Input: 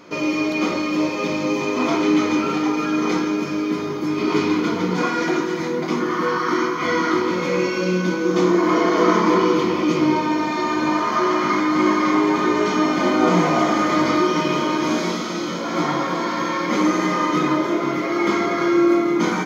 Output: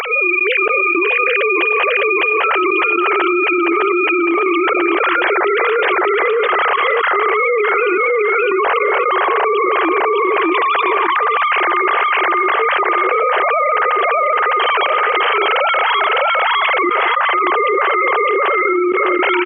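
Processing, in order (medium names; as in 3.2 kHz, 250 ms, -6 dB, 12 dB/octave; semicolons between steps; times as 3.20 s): formants replaced by sine waves; high-pass 450 Hz 12 dB/octave; treble shelf 2 kHz +11 dB; upward compressor, threshold -23 dBFS; trance gate "...xx..xxxxxxx." 111 bpm -24 dB; feedback delay 607 ms, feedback 16%, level -6 dB; level flattener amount 100%; trim -4.5 dB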